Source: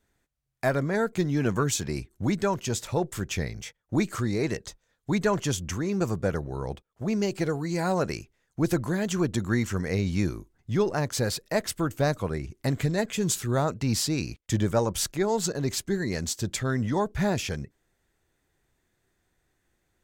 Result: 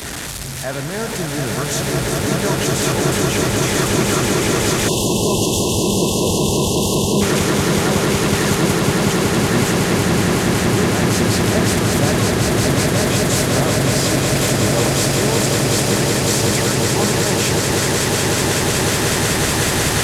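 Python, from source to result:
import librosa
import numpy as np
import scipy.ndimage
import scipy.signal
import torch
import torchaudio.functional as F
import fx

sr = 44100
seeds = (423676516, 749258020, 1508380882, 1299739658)

p1 = fx.delta_mod(x, sr, bps=64000, step_db=-24.5)
p2 = scipy.signal.sosfilt(scipy.signal.butter(2, 65.0, 'highpass', fs=sr, output='sos'), p1)
p3 = fx.over_compress(p2, sr, threshold_db=-32.0, ratio=-1.0)
p4 = p2 + (p3 * 10.0 ** (-0.5 / 20.0))
p5 = fx.echo_swell(p4, sr, ms=185, loudest=8, wet_db=-5)
p6 = fx.spec_erase(p5, sr, start_s=4.88, length_s=2.33, low_hz=1100.0, high_hz=2600.0)
y = fx.band_widen(p6, sr, depth_pct=40)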